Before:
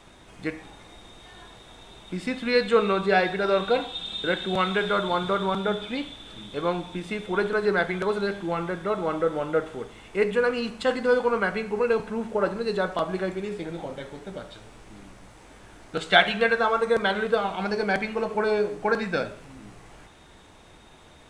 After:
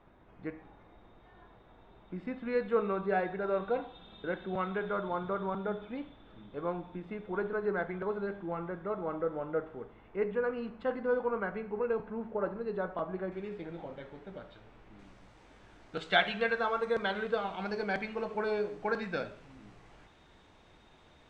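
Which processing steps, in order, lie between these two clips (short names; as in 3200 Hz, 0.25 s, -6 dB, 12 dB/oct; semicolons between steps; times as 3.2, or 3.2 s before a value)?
LPF 1500 Hz 12 dB/oct, from 13.32 s 2800 Hz, from 14.99 s 5100 Hz; gain -8.5 dB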